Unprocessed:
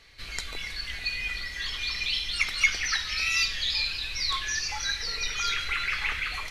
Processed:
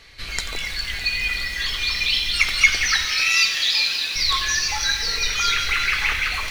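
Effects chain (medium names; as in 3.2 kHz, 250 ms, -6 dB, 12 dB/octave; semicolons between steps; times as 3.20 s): 3.05–4.16 s: high-pass 260 Hz 12 dB/octave; feedback echo behind a high-pass 203 ms, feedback 77%, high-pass 3.8 kHz, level -12 dB; bit-crushed delay 88 ms, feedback 80%, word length 7-bit, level -12.5 dB; trim +7.5 dB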